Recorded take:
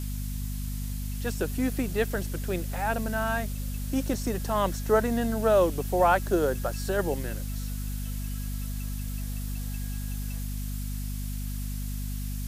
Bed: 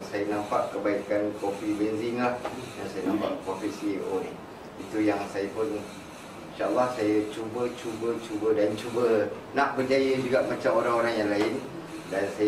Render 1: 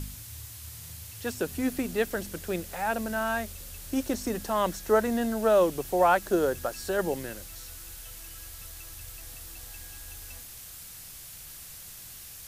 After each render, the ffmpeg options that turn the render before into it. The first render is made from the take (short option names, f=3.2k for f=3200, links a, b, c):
-af "bandreject=f=50:t=h:w=4,bandreject=f=100:t=h:w=4,bandreject=f=150:t=h:w=4,bandreject=f=200:t=h:w=4,bandreject=f=250:t=h:w=4"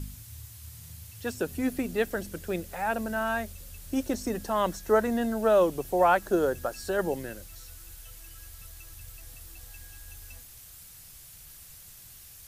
-af "afftdn=nr=6:nf=-45"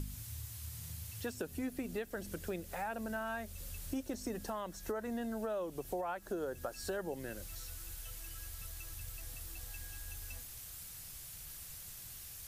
-af "alimiter=limit=-19.5dB:level=0:latency=1:release=306,acompressor=threshold=-39dB:ratio=3"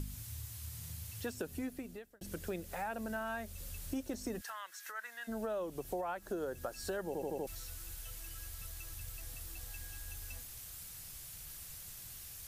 -filter_complex "[0:a]asplit=3[a][b][c];[a]afade=t=out:st=4.4:d=0.02[d];[b]highpass=f=1.6k:t=q:w=2.3,afade=t=in:st=4.4:d=0.02,afade=t=out:st=5.27:d=0.02[e];[c]afade=t=in:st=5.27:d=0.02[f];[d][e][f]amix=inputs=3:normalize=0,asplit=7[g][h][i][j][k][l][m];[g]atrim=end=2.21,asetpts=PTS-STARTPTS,afade=t=out:st=1.55:d=0.66[n];[h]atrim=start=2.21:end=7.152,asetpts=PTS-STARTPTS,afade=t=in:d=0.004:c=hsin[o];[i]atrim=start=7.068:end=7.152[p];[j]atrim=start=7.068:end=7.152[q];[k]atrim=start=7.068:end=7.152[r];[l]atrim=start=7.068:end=7.152[s];[m]atrim=start=7.468[t];[n][o]concat=n=2:v=0:a=1[u];[u][p]acrossfade=d=0.004:c1=hsin:c2=hsin[v];[v][q]acrossfade=d=0.004:c1=hsin:c2=hsin[w];[w][r]acrossfade=d=0.004:c1=hsin:c2=hsin[x];[x][s]acrossfade=d=0.004:c1=hsin:c2=hsin[y];[y][t]acrossfade=d=0.004:c1=hsin:c2=hsin"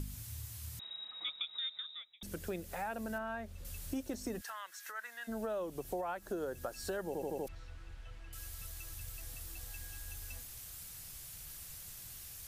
-filter_complex "[0:a]asettb=1/sr,asplit=3[a][b][c];[a]atrim=end=0.794[d];[b]atrim=start=0.79:end=2.23,asetpts=PTS-STARTPTS,afade=t=in:d=0.004:c=qsin,afade=t=out:st=1.436:d=0.004:c=qsin,lowpass=f=3.3k:t=q:w=0.5098,lowpass=f=3.3k:t=q:w=0.6013,lowpass=f=3.3k:t=q:w=0.9,lowpass=f=3.3k:t=q:w=2.563,afreqshift=-3900[e];[c]atrim=start=2.226[f];[d][e]acrossfade=d=0.004:c1=hsin:c2=qsin[g];[g][f]acrossfade=d=0.004:c1=qsin:c2=hsin,asettb=1/sr,asplit=3[h][i][j];[h]atrim=end=3.184[k];[i]atrim=start=3.18:end=3.65,asetpts=PTS-STARTPTS,afade=t=in:d=0.004:c=qsin,afade=t=out:st=0.466:d=0.004:c=qsin,lowpass=f=2.1k:p=1[l];[j]atrim=start=3.646[m];[k][l]acrossfade=d=0.004:c1=hsin:c2=qsin[n];[n][m]acrossfade=d=0.004:c1=qsin:c2=hsin,asettb=1/sr,asplit=3[o][p][q];[o]atrim=end=7.484[r];[p]atrim=start=7.48:end=8.33,asetpts=PTS-STARTPTS,afade=t=in:d=0.004:c=qsin,afade=t=out:st=0.846:d=0.004:c=qsin,lowpass=2.3k[s];[q]atrim=start=8.326[t];[r][s]acrossfade=d=0.004:c1=hsin:c2=qsin[u];[u][t]acrossfade=d=0.004:c1=qsin:c2=hsin"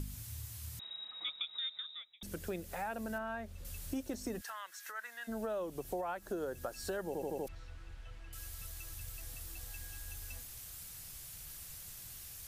-af anull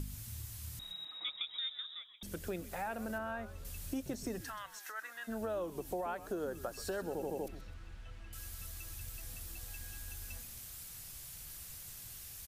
-filter_complex "[0:a]asplit=4[a][b][c][d];[b]adelay=128,afreqshift=-130,volume=-14dB[e];[c]adelay=256,afreqshift=-260,volume=-22.9dB[f];[d]adelay=384,afreqshift=-390,volume=-31.7dB[g];[a][e][f][g]amix=inputs=4:normalize=0"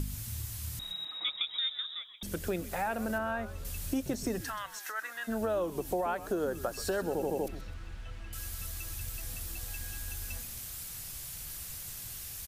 -af "volume=6.5dB"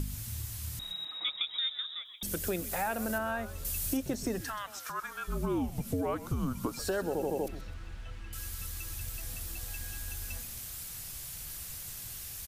-filter_complex "[0:a]asettb=1/sr,asplit=3[a][b][c];[a]atrim=end=2.054[d];[b]atrim=start=2.05:end=3.97,asetpts=PTS-STARTPTS,afade=t=in:d=0.004:c=qsin,afade=t=out:st=1.916:d=0.004:c=qsin,aemphasis=mode=production:type=cd[e];[c]atrim=start=3.966[f];[d][e]acrossfade=d=0.004:c1=hsin:c2=qsin[g];[g][f]acrossfade=d=0.004:c1=qsin:c2=hsin,asettb=1/sr,asplit=3[h][i][j];[h]atrim=end=4.674[k];[i]atrim=start=4.67:end=6.79,asetpts=PTS-STARTPTS,afade=t=in:d=0.004:c=qsin,afade=t=out:st=2.116:d=0.004:c=qsin,afreqshift=-270[l];[j]atrim=start=6.786[m];[k][l]acrossfade=d=0.004:c1=hsin:c2=qsin[n];[n][m]acrossfade=d=0.004:c1=qsin:c2=hsin,asettb=1/sr,asplit=3[o][p][q];[o]atrim=end=8.154[r];[p]atrim=start=8.15:end=8.92,asetpts=PTS-STARTPTS,afade=t=in:d=0.004:c=qsin,afade=t=out:st=0.766:d=0.004:c=qsin,bandreject=f=660:w=5.3[s];[q]atrim=start=8.916[t];[r][s]acrossfade=d=0.004:c1=hsin:c2=qsin[u];[u][t]acrossfade=d=0.004:c1=qsin:c2=hsin"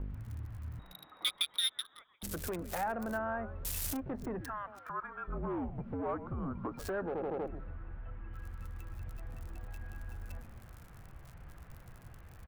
-filter_complex "[0:a]acrossover=split=770|1700[a][b][c];[a]asoftclip=type=tanh:threshold=-34.5dB[d];[c]acrusher=bits=4:mix=0:aa=0.5[e];[d][b][e]amix=inputs=3:normalize=0"